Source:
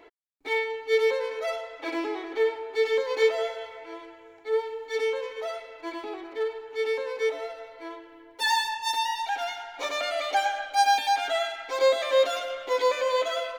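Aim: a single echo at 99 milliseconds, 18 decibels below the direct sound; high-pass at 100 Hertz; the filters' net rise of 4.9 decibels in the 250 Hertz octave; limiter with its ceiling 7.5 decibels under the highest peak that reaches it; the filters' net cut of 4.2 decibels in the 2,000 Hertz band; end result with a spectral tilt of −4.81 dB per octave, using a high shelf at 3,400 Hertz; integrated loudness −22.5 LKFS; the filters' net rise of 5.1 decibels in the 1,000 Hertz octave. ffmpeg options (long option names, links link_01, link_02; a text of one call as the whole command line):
ffmpeg -i in.wav -af "highpass=100,equalizer=frequency=250:width_type=o:gain=7.5,equalizer=frequency=1000:width_type=o:gain=7.5,equalizer=frequency=2000:width_type=o:gain=-6.5,highshelf=frequency=3400:gain=-3.5,alimiter=limit=-16dB:level=0:latency=1,aecho=1:1:99:0.126,volume=4dB" out.wav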